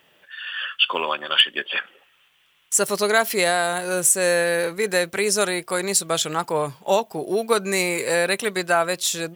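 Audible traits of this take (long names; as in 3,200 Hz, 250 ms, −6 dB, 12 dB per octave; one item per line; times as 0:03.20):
background noise floor −60 dBFS
spectral slope −3.0 dB per octave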